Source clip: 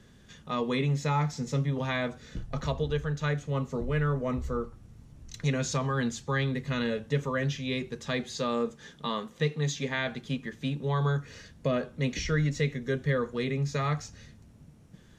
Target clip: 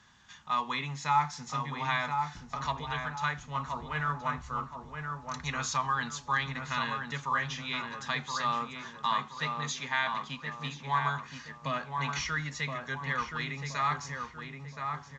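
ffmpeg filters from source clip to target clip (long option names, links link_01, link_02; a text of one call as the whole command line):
ffmpeg -i in.wav -filter_complex "[0:a]highpass=43,lowshelf=frequency=670:width_type=q:width=3:gain=-11,asplit=2[link_01][link_02];[link_02]adelay=1023,lowpass=frequency=1700:poles=1,volume=-4dB,asplit=2[link_03][link_04];[link_04]adelay=1023,lowpass=frequency=1700:poles=1,volume=0.44,asplit=2[link_05][link_06];[link_06]adelay=1023,lowpass=frequency=1700:poles=1,volume=0.44,asplit=2[link_07][link_08];[link_08]adelay=1023,lowpass=frequency=1700:poles=1,volume=0.44,asplit=2[link_09][link_10];[link_10]adelay=1023,lowpass=frequency=1700:poles=1,volume=0.44,asplit=2[link_11][link_12];[link_12]adelay=1023,lowpass=frequency=1700:poles=1,volume=0.44[link_13];[link_03][link_05][link_07][link_09][link_11][link_13]amix=inputs=6:normalize=0[link_14];[link_01][link_14]amix=inputs=2:normalize=0" -ar 16000 -c:a pcm_alaw out.wav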